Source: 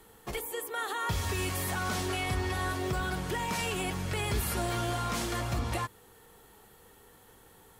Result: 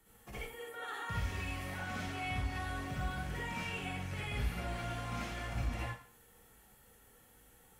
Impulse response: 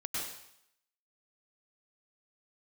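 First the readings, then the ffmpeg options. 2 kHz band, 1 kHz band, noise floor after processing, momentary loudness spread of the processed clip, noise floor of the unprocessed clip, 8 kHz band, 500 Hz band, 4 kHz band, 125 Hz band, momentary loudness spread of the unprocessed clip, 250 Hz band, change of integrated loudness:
−5.5 dB, −8.0 dB, −63 dBFS, 7 LU, −58 dBFS, −15.0 dB, −10.5 dB, −9.0 dB, −5.5 dB, 4 LU, −7.5 dB, −7.5 dB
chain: -filter_complex "[0:a]equalizer=frequency=400:width_type=o:width=0.67:gain=-9,equalizer=frequency=1000:width_type=o:width=0.67:gain=-7,equalizer=frequency=4000:width_type=o:width=0.67:gain=-6,acrossover=split=120|4100[link_01][link_02][link_03];[link_03]acompressor=threshold=-55dB:ratio=10[link_04];[link_01][link_02][link_04]amix=inputs=3:normalize=0[link_05];[1:a]atrim=start_sample=2205,asetrate=79380,aresample=44100[link_06];[link_05][link_06]afir=irnorm=-1:irlink=0,volume=-1dB"

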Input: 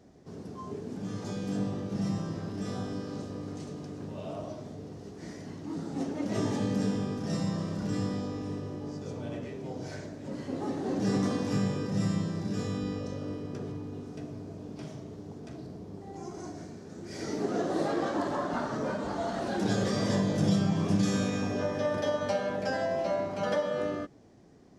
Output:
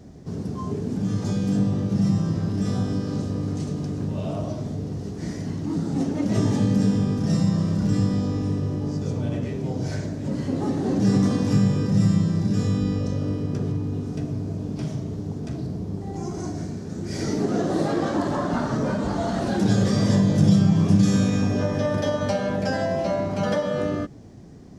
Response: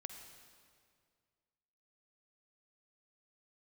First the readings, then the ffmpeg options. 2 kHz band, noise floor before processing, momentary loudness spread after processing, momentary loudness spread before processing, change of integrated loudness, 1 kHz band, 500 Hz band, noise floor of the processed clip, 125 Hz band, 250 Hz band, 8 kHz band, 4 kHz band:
+4.0 dB, −46 dBFS, 11 LU, 14 LU, +8.5 dB, +4.5 dB, +5.0 dB, −33 dBFS, +12.0 dB, +9.5 dB, +6.0 dB, +5.0 dB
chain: -filter_complex "[0:a]bass=frequency=250:gain=10,treble=frequency=4000:gain=3,asplit=2[link_01][link_02];[link_02]acompressor=threshold=-30dB:ratio=6,volume=1.5dB[link_03];[link_01][link_03]amix=inputs=2:normalize=0"

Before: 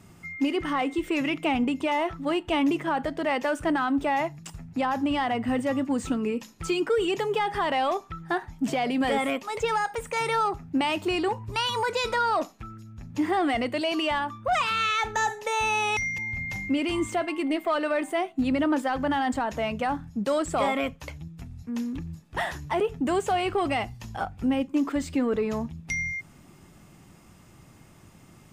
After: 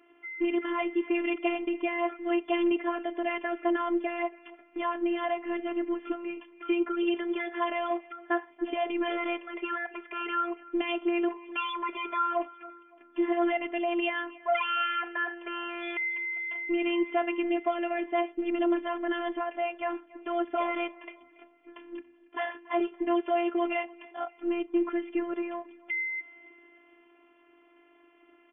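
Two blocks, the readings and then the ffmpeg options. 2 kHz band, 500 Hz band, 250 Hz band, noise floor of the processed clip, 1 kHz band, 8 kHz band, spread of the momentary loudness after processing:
−3.5 dB, −2.5 dB, −3.5 dB, −61 dBFS, −5.5 dB, below −40 dB, 9 LU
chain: -af "afftfilt=real='re*between(b*sr/4096,240,3400)':imag='im*between(b*sr/4096,240,3400)':win_size=4096:overlap=0.75,afftfilt=real='hypot(re,im)*cos(PI*b)':imag='0':win_size=512:overlap=0.75,aecho=1:1:282|564|846:0.0841|0.0362|0.0156"

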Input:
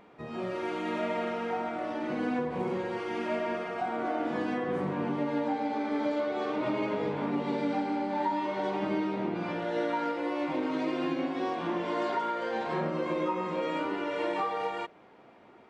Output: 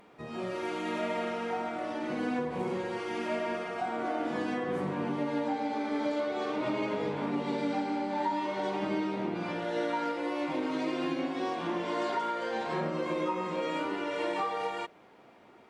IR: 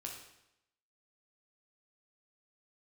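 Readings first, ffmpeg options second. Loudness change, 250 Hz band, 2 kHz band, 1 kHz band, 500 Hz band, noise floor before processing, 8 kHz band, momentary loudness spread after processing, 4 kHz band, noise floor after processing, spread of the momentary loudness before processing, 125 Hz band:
−1.0 dB, −1.5 dB, 0.0 dB, −1.0 dB, −1.5 dB, −56 dBFS, can't be measured, 3 LU, +1.5 dB, −57 dBFS, 3 LU, −1.5 dB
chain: -af "aemphasis=mode=production:type=cd,volume=-1dB"

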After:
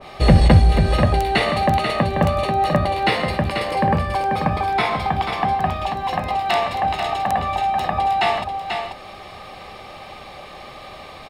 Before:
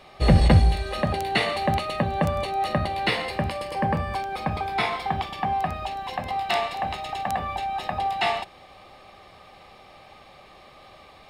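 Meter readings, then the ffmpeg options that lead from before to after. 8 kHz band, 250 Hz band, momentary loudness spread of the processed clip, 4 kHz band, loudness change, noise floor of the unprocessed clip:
can't be measured, +6.0 dB, 21 LU, +4.0 dB, +5.5 dB, −50 dBFS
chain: -filter_complex "[0:a]asplit=2[link_01][link_02];[link_02]acompressor=threshold=-36dB:ratio=6,volume=1.5dB[link_03];[link_01][link_03]amix=inputs=2:normalize=0,aecho=1:1:488:0.473,adynamicequalizer=threshold=0.0178:dfrequency=1800:dqfactor=0.7:tfrequency=1800:tqfactor=0.7:attack=5:release=100:ratio=0.375:range=1.5:mode=cutabove:tftype=highshelf,volume=3.5dB"

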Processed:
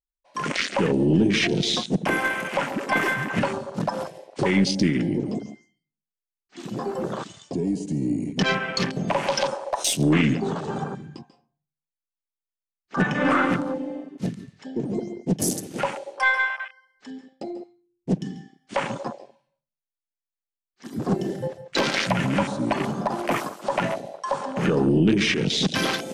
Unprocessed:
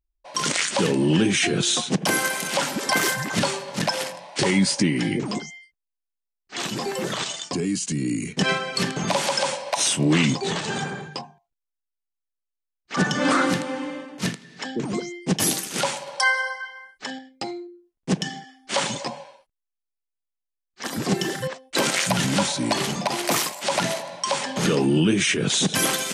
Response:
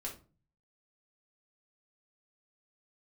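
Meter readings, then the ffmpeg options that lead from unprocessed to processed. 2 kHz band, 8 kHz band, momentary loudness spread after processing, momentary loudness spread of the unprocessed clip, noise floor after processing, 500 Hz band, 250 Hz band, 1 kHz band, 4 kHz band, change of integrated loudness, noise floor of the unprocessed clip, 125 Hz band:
−0.5 dB, −8.5 dB, 15 LU, 13 LU, below −85 dBFS, +0.5 dB, +0.5 dB, −0.5 dB, −4.5 dB, −1.0 dB, −84 dBFS, +0.5 dB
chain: -filter_complex "[0:a]asplit=2[link_01][link_02];[1:a]atrim=start_sample=2205,adelay=139[link_03];[link_02][link_03]afir=irnorm=-1:irlink=0,volume=-10dB[link_04];[link_01][link_04]amix=inputs=2:normalize=0,afwtdn=0.0447,aeval=exprs='0.422*(cos(1*acos(clip(val(0)/0.422,-1,1)))-cos(1*PI/2))+0.0376*(cos(2*acos(clip(val(0)/0.422,-1,1)))-cos(2*PI/2))':channel_layout=same"

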